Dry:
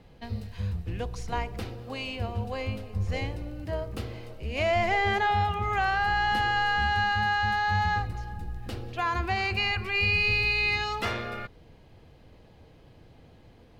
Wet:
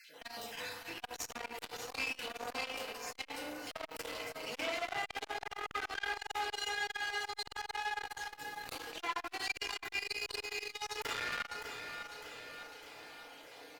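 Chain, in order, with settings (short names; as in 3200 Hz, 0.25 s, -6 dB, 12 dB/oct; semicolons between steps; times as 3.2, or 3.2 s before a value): random spectral dropouts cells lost 35%; HPF 580 Hz 12 dB/oct; tilt +2.5 dB/oct; limiter -24 dBFS, peak gain reduction 10 dB; compressor 4:1, threshold -39 dBFS, peak gain reduction 9.5 dB; one-sided clip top -50.5 dBFS; feedback echo 0.603 s, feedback 53%, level -10 dB; FDN reverb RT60 0.98 s, low-frequency decay 1×, high-frequency decay 0.5×, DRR -2 dB; core saturation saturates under 2000 Hz; gain +5.5 dB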